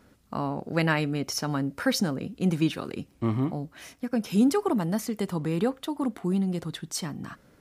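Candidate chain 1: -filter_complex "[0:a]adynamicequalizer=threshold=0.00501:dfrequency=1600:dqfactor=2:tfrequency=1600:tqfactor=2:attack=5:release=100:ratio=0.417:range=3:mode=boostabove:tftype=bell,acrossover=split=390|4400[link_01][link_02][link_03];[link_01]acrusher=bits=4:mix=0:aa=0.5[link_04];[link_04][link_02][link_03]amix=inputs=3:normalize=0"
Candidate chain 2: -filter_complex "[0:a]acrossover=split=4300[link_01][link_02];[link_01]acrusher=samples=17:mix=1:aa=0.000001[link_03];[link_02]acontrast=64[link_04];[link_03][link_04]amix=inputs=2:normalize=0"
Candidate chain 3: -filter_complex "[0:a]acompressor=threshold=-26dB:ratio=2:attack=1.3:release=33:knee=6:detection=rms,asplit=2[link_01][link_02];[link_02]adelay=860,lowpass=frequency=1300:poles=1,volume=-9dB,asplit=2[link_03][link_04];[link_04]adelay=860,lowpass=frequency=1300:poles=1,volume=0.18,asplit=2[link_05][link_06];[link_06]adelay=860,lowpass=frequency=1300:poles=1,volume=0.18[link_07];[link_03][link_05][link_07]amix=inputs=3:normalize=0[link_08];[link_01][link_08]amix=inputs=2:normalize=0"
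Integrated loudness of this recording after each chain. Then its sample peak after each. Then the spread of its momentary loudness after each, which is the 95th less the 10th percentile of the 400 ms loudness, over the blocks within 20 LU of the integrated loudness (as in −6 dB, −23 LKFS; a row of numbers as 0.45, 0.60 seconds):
−27.5, −27.5, −31.0 LKFS; −7.0, −11.0, −16.0 dBFS; 13, 12, 7 LU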